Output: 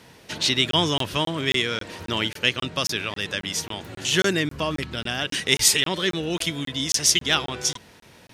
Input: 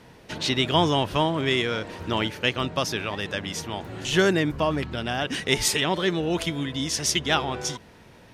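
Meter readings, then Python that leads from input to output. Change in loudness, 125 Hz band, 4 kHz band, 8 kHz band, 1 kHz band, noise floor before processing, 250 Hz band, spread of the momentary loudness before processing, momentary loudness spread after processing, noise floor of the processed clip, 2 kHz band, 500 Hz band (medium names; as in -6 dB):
+2.0 dB, -2.0 dB, +4.5 dB, +6.5 dB, -3.5 dB, -50 dBFS, -2.0 dB, 9 LU, 10 LU, -51 dBFS, +2.0 dB, -2.5 dB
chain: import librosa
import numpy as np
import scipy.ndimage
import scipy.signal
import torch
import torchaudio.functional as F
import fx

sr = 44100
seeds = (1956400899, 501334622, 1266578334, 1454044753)

y = fx.dynamic_eq(x, sr, hz=780.0, q=1.8, threshold_db=-39.0, ratio=4.0, max_db=-5)
y = scipy.signal.sosfilt(scipy.signal.butter(2, 53.0, 'highpass', fs=sr, output='sos'), y)
y = fx.high_shelf(y, sr, hz=2200.0, db=9.0)
y = fx.buffer_crackle(y, sr, first_s=0.71, period_s=0.27, block=1024, kind='zero')
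y = F.gain(torch.from_numpy(y), -1.5).numpy()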